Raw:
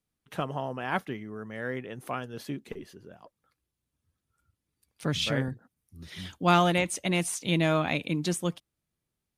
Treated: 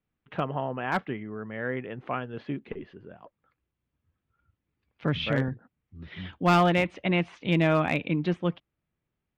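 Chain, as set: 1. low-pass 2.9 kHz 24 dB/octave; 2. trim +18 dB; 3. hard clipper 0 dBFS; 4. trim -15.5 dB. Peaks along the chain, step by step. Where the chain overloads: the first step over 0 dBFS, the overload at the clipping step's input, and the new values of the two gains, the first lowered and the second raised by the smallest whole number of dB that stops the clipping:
-11.0 dBFS, +7.0 dBFS, 0.0 dBFS, -15.5 dBFS; step 2, 7.0 dB; step 2 +11 dB, step 4 -8.5 dB

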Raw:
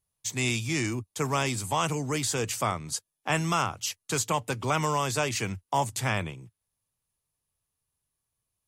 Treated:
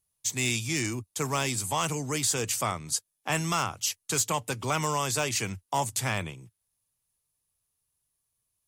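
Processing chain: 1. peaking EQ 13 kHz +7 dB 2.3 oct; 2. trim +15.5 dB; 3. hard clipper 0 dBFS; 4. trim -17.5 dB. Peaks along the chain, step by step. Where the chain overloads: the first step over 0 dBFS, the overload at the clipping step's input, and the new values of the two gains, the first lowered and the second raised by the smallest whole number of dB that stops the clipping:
-10.0 dBFS, +5.5 dBFS, 0.0 dBFS, -17.5 dBFS; step 2, 5.5 dB; step 2 +9.5 dB, step 4 -11.5 dB

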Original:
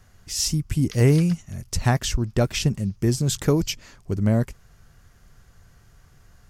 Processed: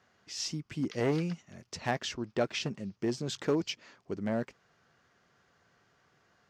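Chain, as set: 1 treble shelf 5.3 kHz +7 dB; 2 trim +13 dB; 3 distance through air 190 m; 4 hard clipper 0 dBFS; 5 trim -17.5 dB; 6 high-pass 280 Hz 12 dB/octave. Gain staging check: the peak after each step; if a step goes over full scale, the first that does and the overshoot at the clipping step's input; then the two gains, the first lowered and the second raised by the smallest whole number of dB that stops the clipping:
-5.5 dBFS, +7.5 dBFS, +6.5 dBFS, 0.0 dBFS, -17.5 dBFS, -14.5 dBFS; step 2, 6.5 dB; step 2 +6 dB, step 5 -10.5 dB

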